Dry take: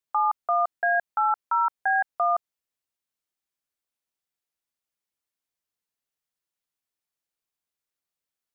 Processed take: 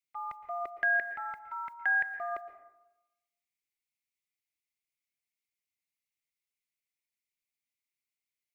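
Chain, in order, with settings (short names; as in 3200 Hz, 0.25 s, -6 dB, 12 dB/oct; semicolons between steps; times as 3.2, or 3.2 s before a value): EQ curve 210 Hz 0 dB, 380 Hz -4 dB, 620 Hz -28 dB, 1400 Hz -23 dB, 2100 Hz +13 dB, 3100 Hz +3 dB; gate -52 dBFS, range -15 dB; bell 630 Hz +11.5 dB 0.4 oct; reverb RT60 1.0 s, pre-delay 0.108 s, DRR 10 dB; gain +7.5 dB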